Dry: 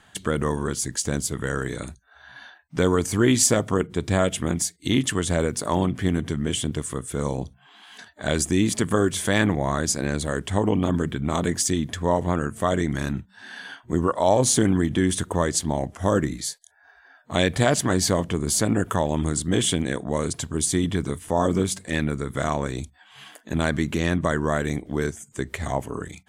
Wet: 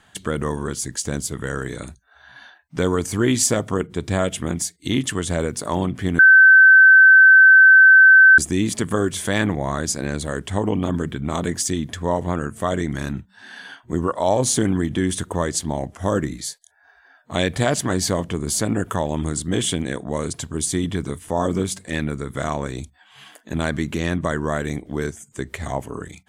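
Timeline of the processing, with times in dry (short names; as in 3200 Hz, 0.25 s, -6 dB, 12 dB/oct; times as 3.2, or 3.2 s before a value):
6.19–8.38 bleep 1540 Hz -6 dBFS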